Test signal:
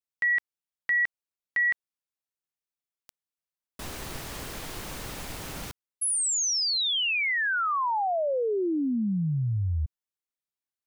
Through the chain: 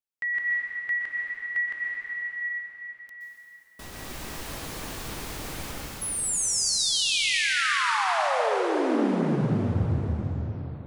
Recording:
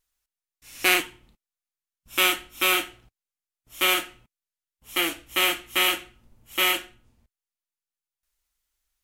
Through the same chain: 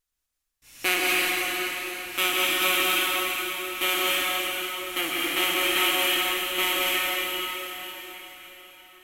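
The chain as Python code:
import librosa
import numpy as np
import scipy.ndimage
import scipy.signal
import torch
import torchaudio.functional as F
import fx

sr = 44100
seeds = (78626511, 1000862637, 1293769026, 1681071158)

y = fx.rev_plate(x, sr, seeds[0], rt60_s=4.9, hf_ratio=0.9, predelay_ms=110, drr_db=-5.5)
y = F.gain(torch.from_numpy(y), -4.5).numpy()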